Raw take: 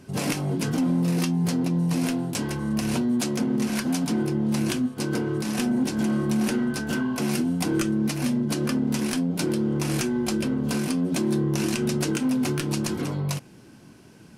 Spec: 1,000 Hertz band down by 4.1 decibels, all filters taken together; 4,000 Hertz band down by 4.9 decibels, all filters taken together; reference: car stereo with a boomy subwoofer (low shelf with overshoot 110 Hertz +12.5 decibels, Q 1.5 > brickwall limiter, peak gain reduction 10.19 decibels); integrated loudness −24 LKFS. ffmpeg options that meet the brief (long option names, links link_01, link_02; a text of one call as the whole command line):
ffmpeg -i in.wav -af "lowshelf=frequency=110:width_type=q:width=1.5:gain=12.5,equalizer=frequency=1000:width_type=o:gain=-5,equalizer=frequency=4000:width_type=o:gain=-6.5,volume=7.5dB,alimiter=limit=-16dB:level=0:latency=1" out.wav